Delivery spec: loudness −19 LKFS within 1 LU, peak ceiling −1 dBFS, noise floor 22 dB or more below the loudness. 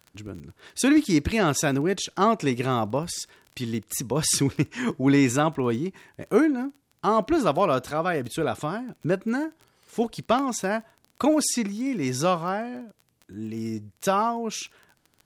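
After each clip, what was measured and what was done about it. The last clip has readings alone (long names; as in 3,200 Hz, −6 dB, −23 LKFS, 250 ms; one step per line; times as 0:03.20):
crackle rate 23 per second; integrated loudness −25.0 LKFS; sample peak −9.0 dBFS; target loudness −19.0 LKFS
→ click removal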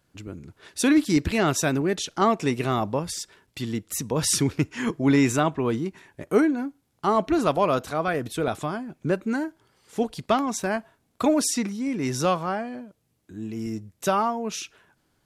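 crackle rate 0 per second; integrated loudness −25.0 LKFS; sample peak −8.5 dBFS; target loudness −19.0 LKFS
→ level +6 dB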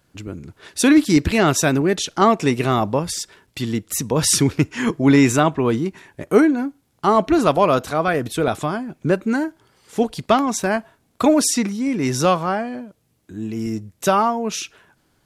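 integrated loudness −19.0 LKFS; sample peak −2.5 dBFS; background noise floor −64 dBFS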